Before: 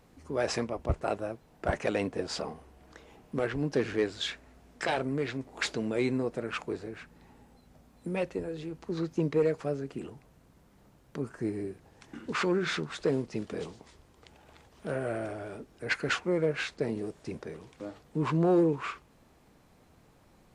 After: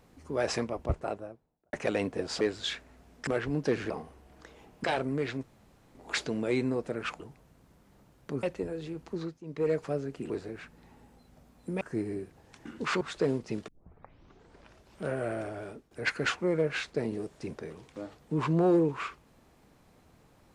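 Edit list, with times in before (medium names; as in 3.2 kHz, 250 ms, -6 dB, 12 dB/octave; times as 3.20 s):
0.72–1.73 s: studio fade out
2.41–3.35 s: swap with 3.98–4.84 s
5.43 s: insert room tone 0.52 s
6.68–8.19 s: swap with 10.06–11.29 s
8.87–9.51 s: dip -18.5 dB, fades 0.31 s
12.49–12.85 s: delete
13.52 s: tape start 1.40 s
15.50–15.75 s: fade out, to -14 dB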